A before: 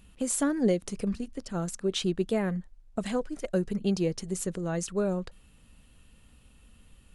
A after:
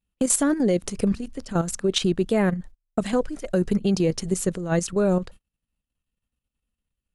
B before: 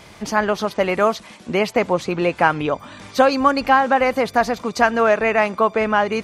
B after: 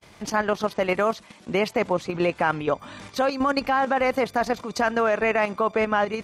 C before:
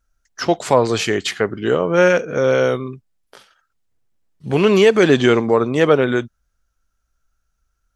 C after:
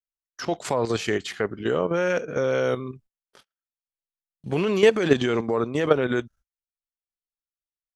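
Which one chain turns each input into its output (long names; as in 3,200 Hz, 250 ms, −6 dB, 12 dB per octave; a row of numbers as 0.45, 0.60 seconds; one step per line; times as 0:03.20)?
noise gate −44 dBFS, range −34 dB
output level in coarse steps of 10 dB
loudness normalisation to −24 LKFS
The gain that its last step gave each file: +10.5, −0.5, −2.5 decibels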